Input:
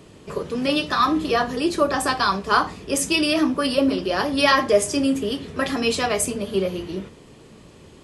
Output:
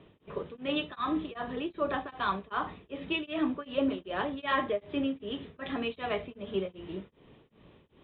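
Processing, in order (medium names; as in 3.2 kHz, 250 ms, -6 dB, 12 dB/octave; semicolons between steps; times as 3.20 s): Chebyshev low-pass 3.8 kHz, order 8; tremolo of two beating tones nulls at 2.6 Hz; trim -8 dB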